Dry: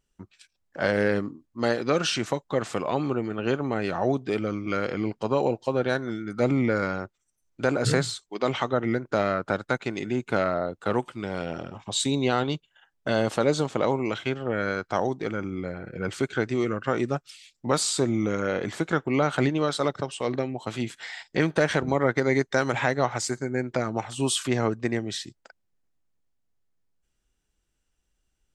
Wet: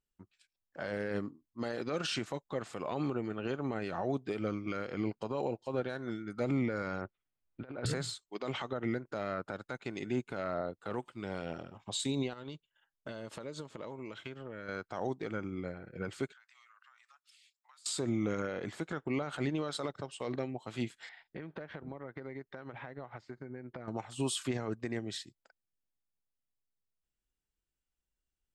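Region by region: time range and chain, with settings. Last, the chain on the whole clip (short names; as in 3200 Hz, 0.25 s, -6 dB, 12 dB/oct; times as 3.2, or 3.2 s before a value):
7.01–7.86 inverse Chebyshev low-pass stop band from 6700 Hz + negative-ratio compressor -30 dBFS, ratio -0.5
12.33–14.69 compressor, threshold -30 dBFS + Butterworth band-stop 750 Hz, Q 7.1
16.32–17.86 steep high-pass 990 Hz + compressor 16:1, threshold -43 dBFS
21.09–23.88 compressor, threshold -30 dBFS + air absorption 320 m
whole clip: notch 5900 Hz, Q 14; limiter -19 dBFS; upward expander 1.5:1, over -46 dBFS; gain -4 dB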